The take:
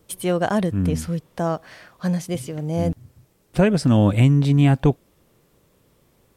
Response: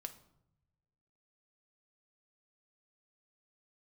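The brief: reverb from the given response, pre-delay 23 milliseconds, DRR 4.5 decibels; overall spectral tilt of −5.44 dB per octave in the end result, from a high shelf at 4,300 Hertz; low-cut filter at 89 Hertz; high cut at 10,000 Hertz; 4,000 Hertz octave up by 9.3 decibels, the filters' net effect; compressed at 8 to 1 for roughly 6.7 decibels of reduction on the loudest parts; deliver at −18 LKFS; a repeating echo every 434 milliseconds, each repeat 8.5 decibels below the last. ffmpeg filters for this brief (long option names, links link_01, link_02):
-filter_complex "[0:a]highpass=89,lowpass=10000,equalizer=frequency=4000:width_type=o:gain=9,highshelf=frequency=4300:gain=7,acompressor=threshold=-18dB:ratio=8,aecho=1:1:434|868|1302|1736:0.376|0.143|0.0543|0.0206,asplit=2[link_01][link_02];[1:a]atrim=start_sample=2205,adelay=23[link_03];[link_02][link_03]afir=irnorm=-1:irlink=0,volume=-1dB[link_04];[link_01][link_04]amix=inputs=2:normalize=0,volume=5dB"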